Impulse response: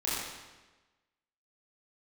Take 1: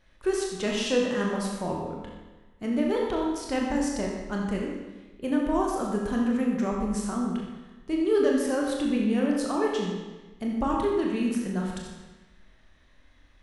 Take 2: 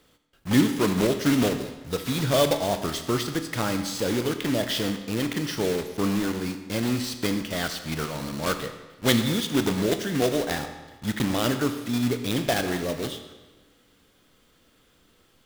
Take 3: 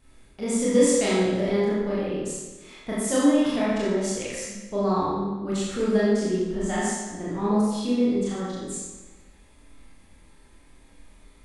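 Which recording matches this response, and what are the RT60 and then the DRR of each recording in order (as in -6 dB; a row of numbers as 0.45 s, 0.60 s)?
3; 1.2 s, 1.2 s, 1.2 s; -2.0 dB, 7.5 dB, -9.0 dB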